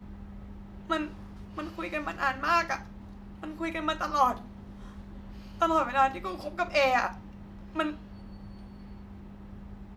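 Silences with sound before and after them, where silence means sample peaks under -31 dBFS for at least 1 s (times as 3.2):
4.34–5.62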